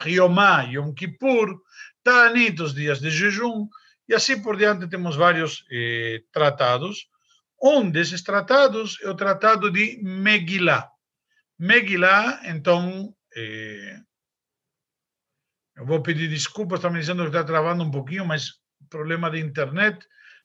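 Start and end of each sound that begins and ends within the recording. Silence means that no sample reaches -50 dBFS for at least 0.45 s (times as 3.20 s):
11.59–14.02 s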